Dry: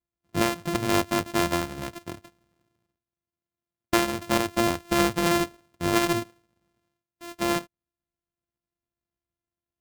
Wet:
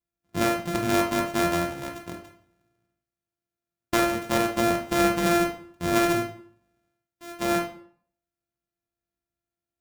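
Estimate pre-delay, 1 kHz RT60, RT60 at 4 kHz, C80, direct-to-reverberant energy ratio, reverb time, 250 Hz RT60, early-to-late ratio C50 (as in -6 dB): 13 ms, 0.55 s, 0.40 s, 11.5 dB, 2.0 dB, 0.55 s, 0.60 s, 7.0 dB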